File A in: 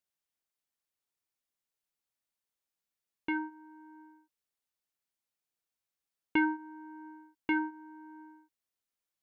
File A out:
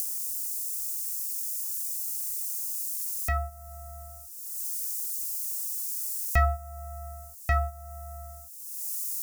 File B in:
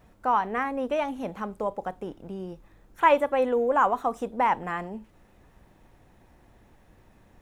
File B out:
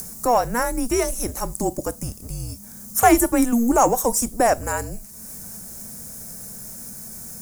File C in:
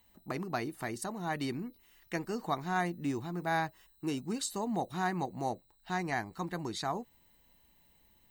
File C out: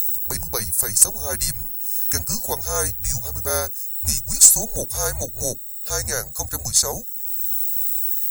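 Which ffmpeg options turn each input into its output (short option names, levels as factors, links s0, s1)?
-filter_complex "[0:a]asplit=2[s0][s1];[s1]acompressor=mode=upward:threshold=0.0178:ratio=2.5,volume=0.708[s2];[s0][s2]amix=inputs=2:normalize=0,aexciter=amount=10.4:drive=9.7:freq=5400,afreqshift=-240,asoftclip=type=tanh:threshold=0.75,aeval=exprs='0.75*(cos(1*acos(clip(val(0)/0.75,-1,1)))-cos(1*PI/2))+0.015*(cos(2*acos(clip(val(0)/0.75,-1,1)))-cos(2*PI/2))+0.00596*(cos(6*acos(clip(val(0)/0.75,-1,1)))-cos(6*PI/2))':c=same,volume=1.12"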